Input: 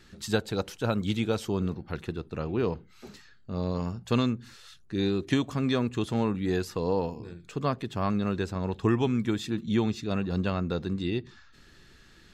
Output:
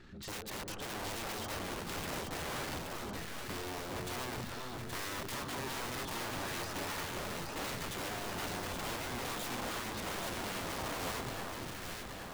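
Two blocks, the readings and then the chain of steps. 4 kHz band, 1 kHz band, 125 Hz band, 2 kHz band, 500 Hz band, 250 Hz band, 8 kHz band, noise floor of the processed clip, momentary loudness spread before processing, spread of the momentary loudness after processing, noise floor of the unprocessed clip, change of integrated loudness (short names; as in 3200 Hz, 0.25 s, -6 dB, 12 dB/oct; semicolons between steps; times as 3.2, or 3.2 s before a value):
-1.5 dB, -3.5 dB, -14.5 dB, -0.5 dB, -12.0 dB, -16.0 dB, +5.0 dB, -45 dBFS, 9 LU, 4 LU, -56 dBFS, -9.5 dB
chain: LPF 1800 Hz 6 dB/oct; notch 490 Hz, Q 13; transient shaper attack -5 dB, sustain +7 dB; compressor 10:1, threshold -32 dBFS, peak gain reduction 11.5 dB; wrapped overs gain 37.5 dB; echo with dull and thin repeats by turns 0.412 s, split 1300 Hz, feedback 78%, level -2 dB; gain +1 dB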